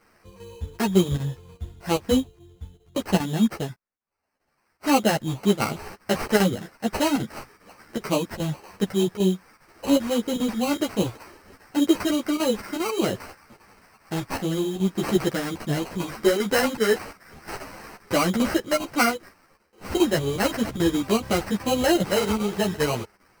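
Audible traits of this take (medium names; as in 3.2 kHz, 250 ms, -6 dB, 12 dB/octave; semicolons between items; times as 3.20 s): aliases and images of a low sample rate 3.5 kHz, jitter 0%; chopped level 2.5 Hz, depth 65%, duty 90%; a shimmering, thickened sound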